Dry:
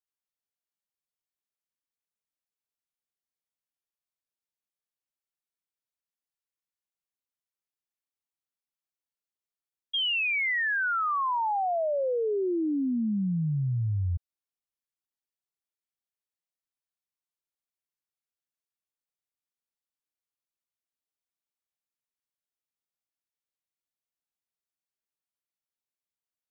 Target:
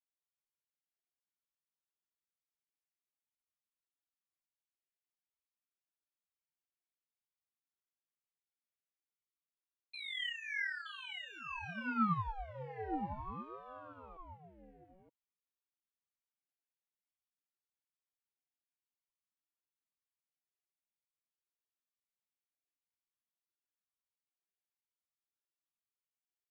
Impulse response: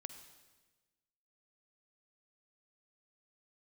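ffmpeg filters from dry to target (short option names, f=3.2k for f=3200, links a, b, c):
-filter_complex "[0:a]aemphasis=mode=production:type=50kf,acrossover=split=2800[a][b];[b]acompressor=threshold=-36dB:ratio=4:attack=1:release=60[c];[a][c]amix=inputs=2:normalize=0,equalizer=f=840:w=6:g=-14,volume=30.5dB,asoftclip=hard,volume=-30.5dB,asplit=3[d][e][f];[d]bandpass=f=530:t=q:w=8,volume=0dB[g];[e]bandpass=f=1.84k:t=q:w=8,volume=-6dB[h];[f]bandpass=f=2.48k:t=q:w=8,volume=-9dB[i];[g][h][i]amix=inputs=3:normalize=0,flanger=delay=0.8:depth=7.8:regen=22:speed=1.2:shape=triangular,asplit=2[j][k];[k]aecho=0:1:921:0.473[l];[j][l]amix=inputs=2:normalize=0,aeval=exprs='val(0)*sin(2*PI*520*n/s+520*0.7/0.51*sin(2*PI*0.51*n/s))':c=same,volume=8dB"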